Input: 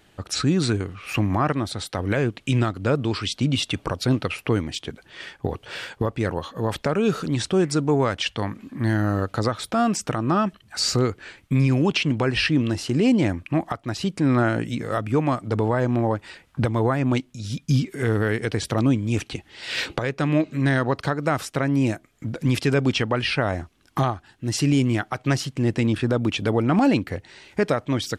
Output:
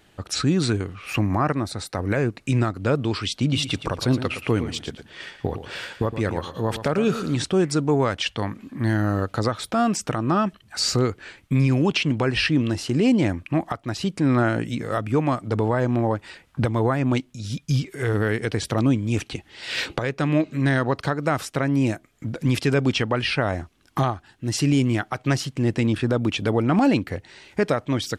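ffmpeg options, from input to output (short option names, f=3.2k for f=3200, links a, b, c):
-filter_complex "[0:a]asettb=1/sr,asplit=3[a][b][c];[a]atrim=end=1.184[d];[b]atrim=start=1.18:end=2.78,asetpts=PTS-STARTPTS,afade=t=in:d=0.004:c=qsin,afade=t=out:st=1.596:d=0.004:c=qsin,equalizer=f=3.2k:w=4.5:g=-12[e];[c]atrim=start=2.776[f];[d][e]acrossfade=d=0.004:c1=hsin:c2=qsin[g];[g][f]acrossfade=d=0.004:c1=qsin:c2=hsin,asettb=1/sr,asplit=3[h][i][j];[h]atrim=end=3.364[k];[i]atrim=start=3.36:end=7.44,asetpts=PTS-STARTPTS,afade=t=in:d=0.004:c=qsin,afade=t=out:st=4.076:d=0.004:c=qsin,aecho=1:1:115|230|345:0.282|0.0592|0.0124,atrim=end_sample=179928[l];[j]atrim=start=7.436[m];[k][l]acrossfade=d=0.004:c1=hsin:c2=qsin[n];[n][m]acrossfade=d=0.004:c1=qsin:c2=hsin,asettb=1/sr,asplit=3[o][p][q];[o]atrim=end=17.574[r];[p]atrim=start=17.57:end=18.14,asetpts=PTS-STARTPTS,afade=t=in:d=0.004:c=qsin,afade=t=out:st=0.566:d=0.004:c=qsin,equalizer=f=230:w=2.7:g=-11[s];[q]atrim=start=18.136[t];[r][s]acrossfade=d=0.004:c1=hsin:c2=qsin[u];[u][t]acrossfade=d=0.004:c1=qsin:c2=hsin"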